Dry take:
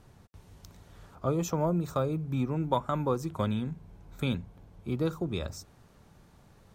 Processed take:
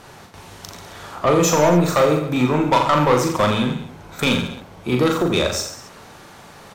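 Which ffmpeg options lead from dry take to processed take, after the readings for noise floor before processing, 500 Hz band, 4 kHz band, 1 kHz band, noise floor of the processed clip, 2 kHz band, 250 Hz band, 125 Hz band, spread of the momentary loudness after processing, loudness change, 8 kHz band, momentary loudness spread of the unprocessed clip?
-59 dBFS, +14.5 dB, +19.5 dB, +15.5 dB, -43 dBFS, +21.0 dB, +12.0 dB, +8.5 dB, 21 LU, +13.5 dB, +19.5 dB, 11 LU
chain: -filter_complex "[0:a]asplit=2[s0][s1];[s1]highpass=f=720:p=1,volume=12.6,asoftclip=type=tanh:threshold=0.237[s2];[s0][s2]amix=inputs=2:normalize=0,lowpass=f=7100:p=1,volume=0.501,aecho=1:1:40|86|138.9|199.7|269.7:0.631|0.398|0.251|0.158|0.1,volume=1.78"

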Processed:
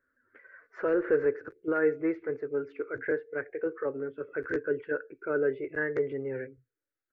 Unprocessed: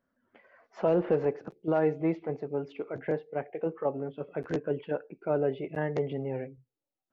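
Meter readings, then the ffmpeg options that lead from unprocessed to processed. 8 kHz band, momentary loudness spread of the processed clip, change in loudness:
no reading, 10 LU, 0.0 dB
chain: -af "firequalizer=gain_entry='entry(110,0);entry(180,-20);entry(270,-2);entry(450,3);entry(730,-16);entry(1500,12);entry(3000,-12);entry(4600,-9)':delay=0.05:min_phase=1"

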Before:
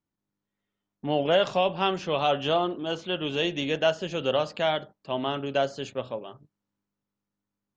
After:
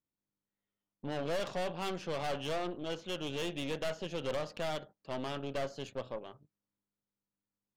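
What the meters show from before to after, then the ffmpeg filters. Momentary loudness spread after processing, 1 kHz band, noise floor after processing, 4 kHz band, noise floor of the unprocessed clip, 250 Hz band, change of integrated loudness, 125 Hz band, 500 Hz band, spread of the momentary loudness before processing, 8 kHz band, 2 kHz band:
7 LU, -12.5 dB, under -85 dBFS, -11.5 dB, under -85 dBFS, -9.0 dB, -11.0 dB, -7.5 dB, -11.0 dB, 11 LU, no reading, -10.5 dB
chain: -af "aeval=exprs='(tanh(28.2*val(0)+0.75)-tanh(0.75))/28.2':c=same,equalizer=f=510:t=o:w=0.29:g=3,volume=0.631"

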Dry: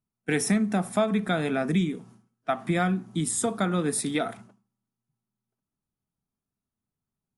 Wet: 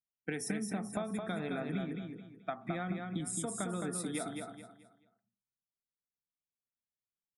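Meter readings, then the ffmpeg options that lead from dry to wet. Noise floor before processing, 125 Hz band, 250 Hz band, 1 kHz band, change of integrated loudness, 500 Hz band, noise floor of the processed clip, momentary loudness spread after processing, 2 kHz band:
under -85 dBFS, -11.0 dB, -11.5 dB, -11.5 dB, -11.5 dB, -11.5 dB, under -85 dBFS, 8 LU, -11.5 dB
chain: -af "afftdn=nr=24:nf=-42,acompressor=threshold=0.0158:ratio=6,aecho=1:1:216|432|648|864:0.596|0.191|0.061|0.0195"

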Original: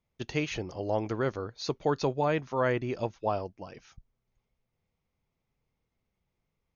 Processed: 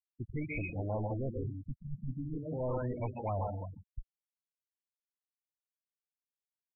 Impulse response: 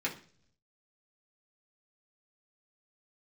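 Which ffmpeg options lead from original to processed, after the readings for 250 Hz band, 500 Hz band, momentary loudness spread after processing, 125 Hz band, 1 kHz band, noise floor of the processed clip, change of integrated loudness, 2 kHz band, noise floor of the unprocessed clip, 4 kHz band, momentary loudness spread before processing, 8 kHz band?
-5.5 dB, -9.0 dB, 9 LU, -0.5 dB, -9.5 dB, under -85 dBFS, -7.0 dB, -9.5 dB, -83 dBFS, under -40 dB, 7 LU, no reading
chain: -filter_complex "[0:a]equalizer=f=100:t=o:w=0.67:g=5,equalizer=f=400:t=o:w=0.67:g=-8,equalizer=f=1600:t=o:w=0.67:g=-12,equalizer=f=4000:t=o:w=0.67:g=10,asplit=2[s0][s1];[1:a]atrim=start_sample=2205,highshelf=f=2700:g=11,adelay=132[s2];[s1][s2]afir=irnorm=-1:irlink=0,volume=0.335[s3];[s0][s3]amix=inputs=2:normalize=0,asoftclip=type=hard:threshold=0.0299,afftfilt=real='re*gte(hypot(re,im),0.0251)':imag='im*gte(hypot(re,im),0.0251)':win_size=1024:overlap=0.75,asubboost=boost=5:cutoff=72,afftfilt=real='re*lt(b*sr/1024,230*pow(2600/230,0.5+0.5*sin(2*PI*0.39*pts/sr)))':imag='im*lt(b*sr/1024,230*pow(2600/230,0.5+0.5*sin(2*PI*0.39*pts/sr)))':win_size=1024:overlap=0.75"

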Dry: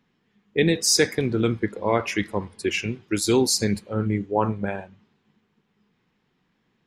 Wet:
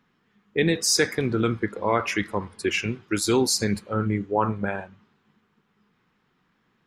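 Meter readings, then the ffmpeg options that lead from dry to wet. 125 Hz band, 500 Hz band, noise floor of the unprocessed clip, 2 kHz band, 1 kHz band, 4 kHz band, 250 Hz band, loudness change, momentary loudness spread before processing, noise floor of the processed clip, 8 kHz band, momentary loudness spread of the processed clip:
-1.5 dB, -1.5 dB, -71 dBFS, +1.0 dB, +1.5 dB, -1.5 dB, -1.5 dB, -1.0 dB, 10 LU, -69 dBFS, -1.5 dB, 8 LU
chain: -filter_complex "[0:a]equalizer=f=1300:t=o:w=0.79:g=7.5,asplit=2[s0][s1];[s1]alimiter=limit=0.178:level=0:latency=1:release=144,volume=0.794[s2];[s0][s2]amix=inputs=2:normalize=0,volume=0.562"

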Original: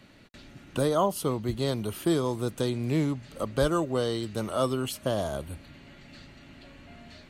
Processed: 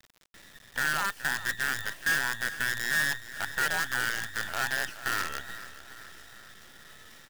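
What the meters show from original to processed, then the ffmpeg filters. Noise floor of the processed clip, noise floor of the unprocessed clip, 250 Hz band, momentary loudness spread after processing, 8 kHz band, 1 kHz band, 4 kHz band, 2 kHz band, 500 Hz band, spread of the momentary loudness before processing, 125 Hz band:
-58 dBFS, -53 dBFS, -18.0 dB, 18 LU, +5.0 dB, -1.0 dB, +3.0 dB, +16.5 dB, -17.5 dB, 8 LU, -15.0 dB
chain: -filter_complex "[0:a]afftfilt=real='real(if(between(b,1,1012),(2*floor((b-1)/92)+1)*92-b,b),0)':imag='imag(if(between(b,1,1012),(2*floor((b-1)/92)+1)*92-b,b),0)*if(between(b,1,1012),-1,1)':win_size=2048:overlap=0.75,acrossover=split=4400[s0][s1];[s1]acompressor=threshold=0.00224:ratio=4:attack=1:release=60[s2];[s0][s2]amix=inputs=2:normalize=0,equalizer=f=300:t=o:w=0.41:g=4.5,acrossover=split=1700[s3][s4];[s3]alimiter=limit=0.0631:level=0:latency=1:release=21[s5];[s5][s4]amix=inputs=2:normalize=0,acrusher=bits=5:dc=4:mix=0:aa=0.000001,aecho=1:1:422|844|1266|1688|2110|2532:0.178|0.101|0.0578|0.0329|0.0188|0.0107,volume=0.794"

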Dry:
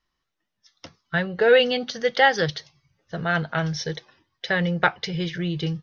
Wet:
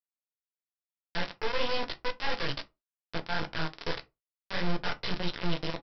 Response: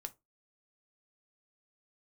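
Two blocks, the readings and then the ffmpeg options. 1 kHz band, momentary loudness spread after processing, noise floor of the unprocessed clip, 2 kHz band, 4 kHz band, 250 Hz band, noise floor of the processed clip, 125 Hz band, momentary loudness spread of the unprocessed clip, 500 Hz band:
-10.5 dB, 8 LU, -80 dBFS, -12.0 dB, -7.0 dB, -10.0 dB, under -85 dBFS, -11.0 dB, 14 LU, -14.5 dB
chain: -filter_complex "[0:a]asplit=2[s0][s1];[s1]adelay=16,volume=0.631[s2];[s0][s2]amix=inputs=2:normalize=0,tremolo=f=2.6:d=0.46,areverse,acompressor=threshold=0.0282:ratio=5,areverse,aecho=1:1:111|222|333:0.0841|0.037|0.0163,flanger=delay=17.5:depth=7.2:speed=1.7,aresample=11025,acrusher=bits=3:dc=4:mix=0:aa=0.000001,aresample=44100[s3];[1:a]atrim=start_sample=2205[s4];[s3][s4]afir=irnorm=-1:irlink=0,volume=2.82"

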